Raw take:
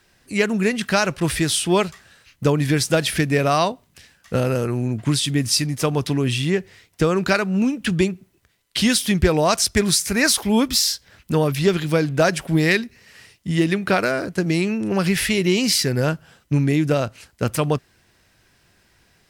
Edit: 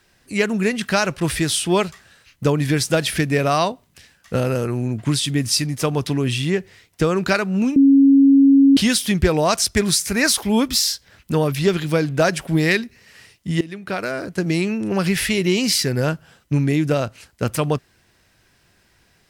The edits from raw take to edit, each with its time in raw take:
0:07.76–0:08.77: beep over 275 Hz −8 dBFS
0:13.61–0:14.47: fade in, from −18.5 dB

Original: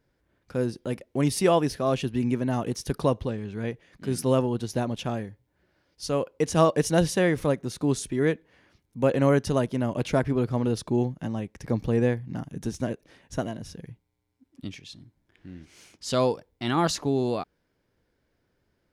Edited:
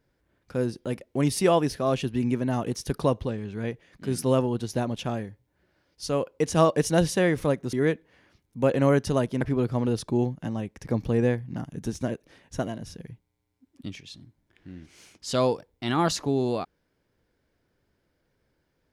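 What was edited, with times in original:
0:07.73–0:08.13: remove
0:09.81–0:10.20: remove

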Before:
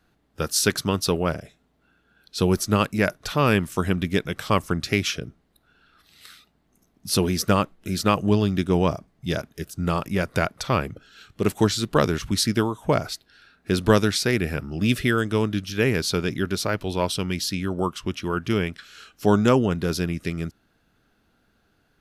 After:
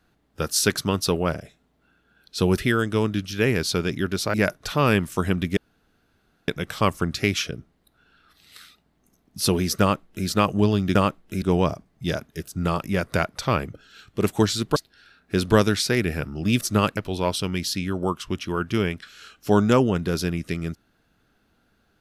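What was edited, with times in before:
0:02.58–0:02.94: swap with 0:14.97–0:16.73
0:04.17: splice in room tone 0.91 s
0:07.49–0:07.96: duplicate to 0:08.64
0:11.98–0:13.12: remove

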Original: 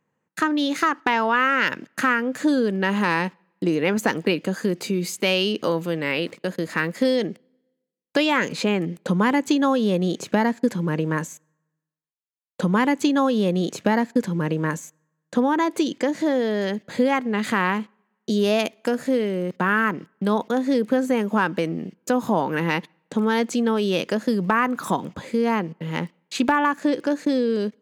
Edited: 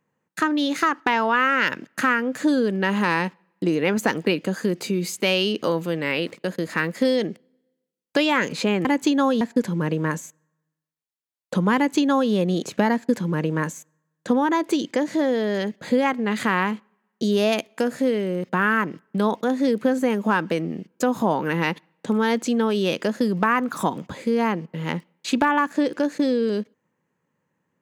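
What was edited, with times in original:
0:08.85–0:09.29: remove
0:09.85–0:10.48: remove

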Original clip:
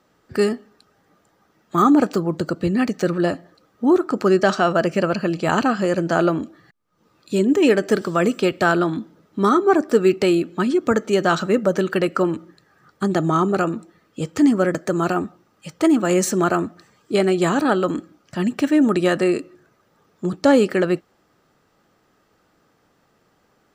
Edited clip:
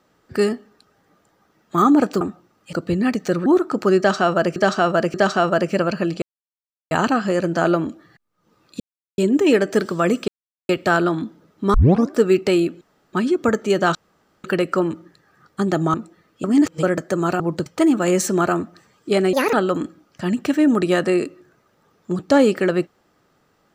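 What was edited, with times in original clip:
0:02.21–0:02.47: swap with 0:15.17–0:15.69
0:03.20–0:03.85: remove
0:04.37–0:04.95: repeat, 3 plays
0:05.45: splice in silence 0.69 s
0:07.34: splice in silence 0.38 s
0:08.44: splice in silence 0.41 s
0:09.49: tape start 0.37 s
0:10.56: splice in room tone 0.32 s
0:11.38–0:11.87: fill with room tone
0:13.37–0:13.71: remove
0:14.21–0:14.60: reverse
0:17.36–0:17.67: play speed 153%

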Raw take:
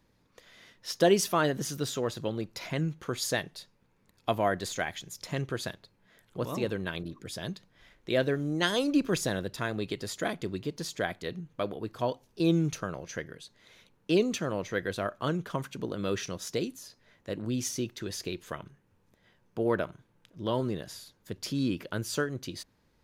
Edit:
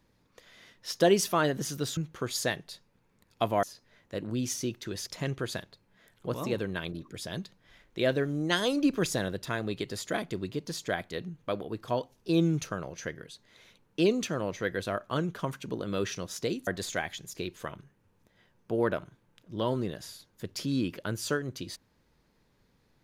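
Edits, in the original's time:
0:01.97–0:02.84: remove
0:04.50–0:05.18: swap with 0:16.78–0:18.22

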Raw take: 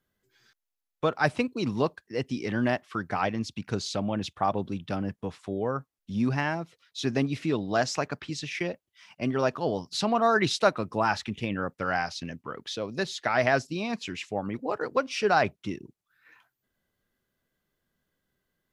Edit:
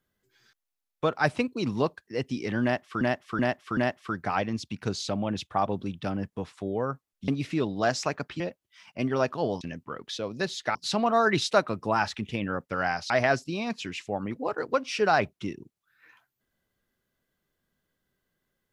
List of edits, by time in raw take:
0:02.63–0:03.01: repeat, 4 plays
0:06.14–0:07.20: remove
0:08.32–0:08.63: remove
0:12.19–0:13.33: move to 0:09.84

